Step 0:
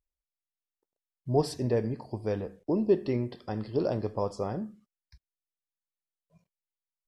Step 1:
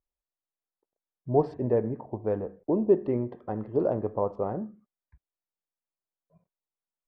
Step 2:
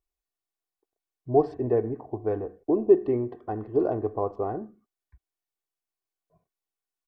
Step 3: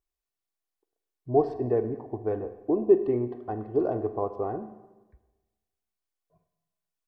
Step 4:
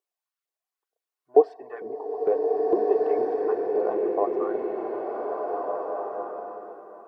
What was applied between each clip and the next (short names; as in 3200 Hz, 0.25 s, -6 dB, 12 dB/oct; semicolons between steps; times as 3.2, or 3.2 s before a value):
Wiener smoothing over 9 samples; LPF 1100 Hz 12 dB/oct; low shelf 240 Hz -8 dB; gain +5 dB
comb 2.7 ms, depth 60%
Schroeder reverb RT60 1.2 s, combs from 33 ms, DRR 11.5 dB; gain -1.5 dB
reverb removal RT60 0.59 s; LFO high-pass saw up 2.2 Hz 430–1600 Hz; bloom reverb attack 1.76 s, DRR -2.5 dB